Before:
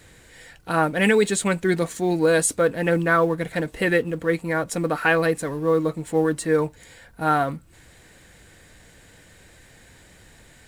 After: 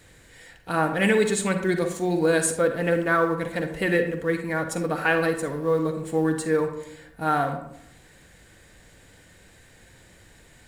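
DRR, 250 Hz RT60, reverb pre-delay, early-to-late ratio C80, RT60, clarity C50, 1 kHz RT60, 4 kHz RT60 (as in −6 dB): 7.0 dB, 1.0 s, 39 ms, 11.0 dB, 0.80 s, 7.5 dB, 0.80 s, 0.45 s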